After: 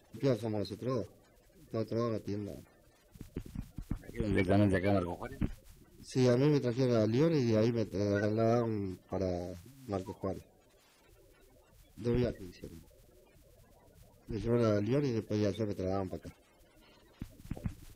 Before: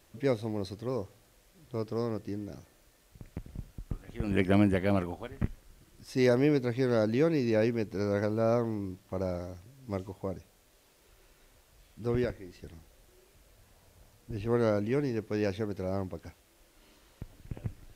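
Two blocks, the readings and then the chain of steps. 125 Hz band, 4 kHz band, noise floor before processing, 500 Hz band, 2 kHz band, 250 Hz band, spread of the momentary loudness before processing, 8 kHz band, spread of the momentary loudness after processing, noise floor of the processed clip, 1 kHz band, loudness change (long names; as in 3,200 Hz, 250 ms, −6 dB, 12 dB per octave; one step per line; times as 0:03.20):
−0.5 dB, −1.0 dB, −64 dBFS, −2.5 dB, −4.0 dB, −2.0 dB, 19 LU, can't be measured, 18 LU, −65 dBFS, −2.0 dB, −2.0 dB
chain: spectral magnitudes quantised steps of 30 dB
soft clipping −20 dBFS, distortion −18 dB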